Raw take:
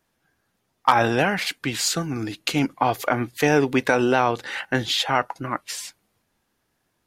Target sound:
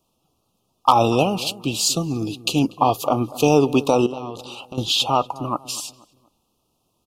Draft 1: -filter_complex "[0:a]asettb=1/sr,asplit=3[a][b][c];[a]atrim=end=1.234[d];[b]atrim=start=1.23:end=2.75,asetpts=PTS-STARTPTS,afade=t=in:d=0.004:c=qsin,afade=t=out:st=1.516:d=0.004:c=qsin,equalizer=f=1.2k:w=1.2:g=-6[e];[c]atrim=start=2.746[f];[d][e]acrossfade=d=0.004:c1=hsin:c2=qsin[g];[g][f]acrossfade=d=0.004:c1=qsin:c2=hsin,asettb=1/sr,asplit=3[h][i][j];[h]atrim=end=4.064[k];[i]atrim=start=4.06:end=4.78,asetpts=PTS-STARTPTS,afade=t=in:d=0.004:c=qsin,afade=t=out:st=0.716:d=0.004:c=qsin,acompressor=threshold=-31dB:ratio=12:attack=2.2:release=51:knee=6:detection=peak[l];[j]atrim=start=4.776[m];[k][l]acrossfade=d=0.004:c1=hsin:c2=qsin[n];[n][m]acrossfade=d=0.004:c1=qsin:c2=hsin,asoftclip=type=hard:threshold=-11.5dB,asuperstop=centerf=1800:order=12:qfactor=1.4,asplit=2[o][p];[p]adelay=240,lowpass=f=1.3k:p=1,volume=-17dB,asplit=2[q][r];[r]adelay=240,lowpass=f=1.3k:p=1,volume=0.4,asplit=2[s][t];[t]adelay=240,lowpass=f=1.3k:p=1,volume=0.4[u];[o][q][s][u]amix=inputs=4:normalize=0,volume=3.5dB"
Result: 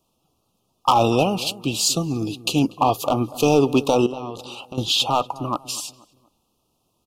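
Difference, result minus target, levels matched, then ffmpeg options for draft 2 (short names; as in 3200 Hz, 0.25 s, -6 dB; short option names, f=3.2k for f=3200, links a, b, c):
hard clip: distortion +31 dB
-filter_complex "[0:a]asettb=1/sr,asplit=3[a][b][c];[a]atrim=end=1.234[d];[b]atrim=start=1.23:end=2.75,asetpts=PTS-STARTPTS,afade=t=in:d=0.004:c=qsin,afade=t=out:st=1.516:d=0.004:c=qsin,equalizer=f=1.2k:w=1.2:g=-6[e];[c]atrim=start=2.746[f];[d][e]acrossfade=d=0.004:c1=hsin:c2=qsin[g];[g][f]acrossfade=d=0.004:c1=qsin:c2=hsin,asettb=1/sr,asplit=3[h][i][j];[h]atrim=end=4.064[k];[i]atrim=start=4.06:end=4.78,asetpts=PTS-STARTPTS,afade=t=in:d=0.004:c=qsin,afade=t=out:st=0.716:d=0.004:c=qsin,acompressor=threshold=-31dB:ratio=12:attack=2.2:release=51:knee=6:detection=peak[l];[j]atrim=start=4.776[m];[k][l]acrossfade=d=0.004:c1=hsin:c2=qsin[n];[n][m]acrossfade=d=0.004:c1=qsin:c2=hsin,asoftclip=type=hard:threshold=-5dB,asuperstop=centerf=1800:order=12:qfactor=1.4,asplit=2[o][p];[p]adelay=240,lowpass=f=1.3k:p=1,volume=-17dB,asplit=2[q][r];[r]adelay=240,lowpass=f=1.3k:p=1,volume=0.4,asplit=2[s][t];[t]adelay=240,lowpass=f=1.3k:p=1,volume=0.4[u];[o][q][s][u]amix=inputs=4:normalize=0,volume=3.5dB"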